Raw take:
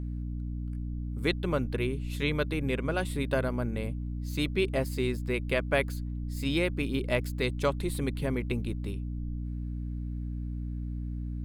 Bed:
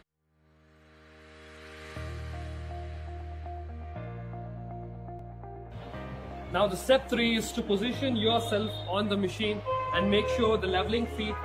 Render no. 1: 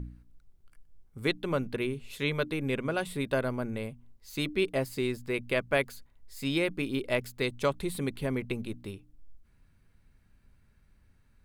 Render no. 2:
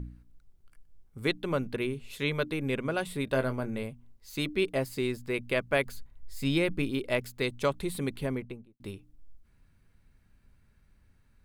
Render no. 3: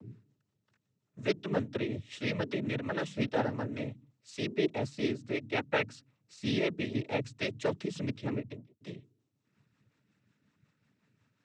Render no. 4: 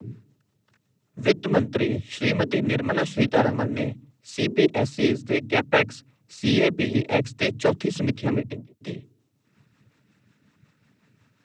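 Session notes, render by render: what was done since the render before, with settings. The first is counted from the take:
de-hum 60 Hz, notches 5
3.25–3.83 doubler 23 ms -9 dB; 5.85–6.9 low shelf 140 Hz +10.5 dB; 8.19–8.8 studio fade out
rotary speaker horn 5.5 Hz; noise vocoder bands 12
gain +10.5 dB

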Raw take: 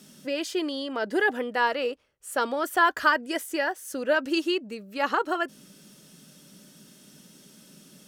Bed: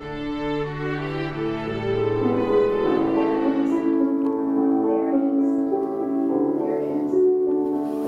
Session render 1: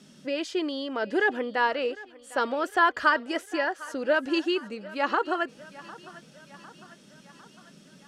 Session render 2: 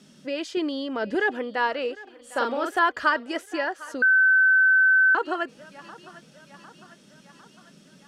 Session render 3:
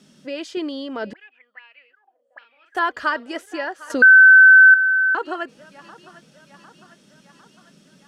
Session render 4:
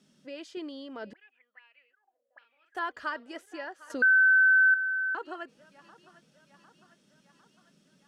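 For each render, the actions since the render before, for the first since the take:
air absorption 71 m; thinning echo 0.753 s, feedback 62%, high-pass 380 Hz, level -18.5 dB
0.57–1.15 low shelf 180 Hz +11.5 dB; 2.03–2.79 doubler 42 ms -4 dB; 4.02–5.15 bleep 1530 Hz -14.5 dBFS
1.13–2.75 auto-wah 480–2500 Hz, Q 18, up, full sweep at -22.5 dBFS; 3.9–4.74 gain +9.5 dB
gain -12 dB

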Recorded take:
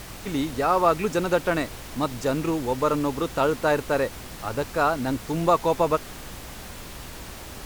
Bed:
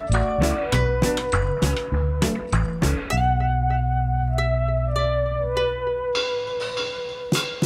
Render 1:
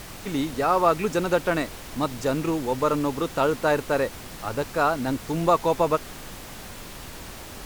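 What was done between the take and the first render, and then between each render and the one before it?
de-hum 60 Hz, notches 2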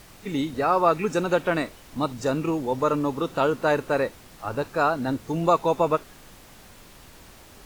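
noise print and reduce 9 dB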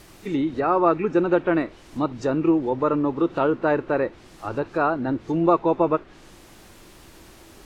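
treble ducked by the level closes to 2300 Hz, closed at -22 dBFS; bell 340 Hz +9.5 dB 0.32 oct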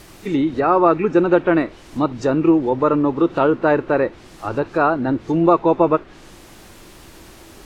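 gain +5 dB; limiter -2 dBFS, peak gain reduction 1.5 dB

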